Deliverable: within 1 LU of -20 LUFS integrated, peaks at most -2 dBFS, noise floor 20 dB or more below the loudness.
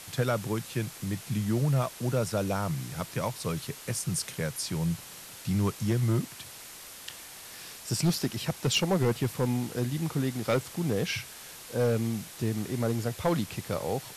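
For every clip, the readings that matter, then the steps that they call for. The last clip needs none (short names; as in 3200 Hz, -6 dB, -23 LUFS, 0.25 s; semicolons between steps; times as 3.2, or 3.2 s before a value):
clipped 0.5%; flat tops at -19.0 dBFS; noise floor -46 dBFS; noise floor target -50 dBFS; loudness -30.0 LUFS; peak -19.0 dBFS; loudness target -20.0 LUFS
-> clip repair -19 dBFS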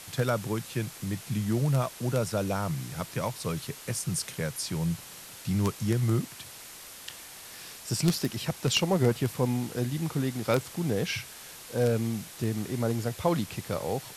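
clipped 0.0%; noise floor -46 dBFS; noise floor target -50 dBFS
-> denoiser 6 dB, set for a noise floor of -46 dBFS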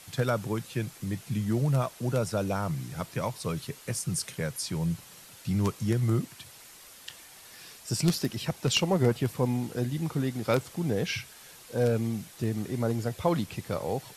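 noise floor -51 dBFS; loudness -30.0 LUFS; peak -10.5 dBFS; loudness target -20.0 LUFS
-> gain +10 dB; limiter -2 dBFS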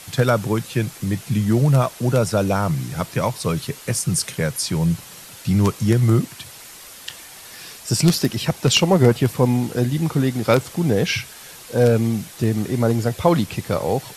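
loudness -20.0 LUFS; peak -2.0 dBFS; noise floor -41 dBFS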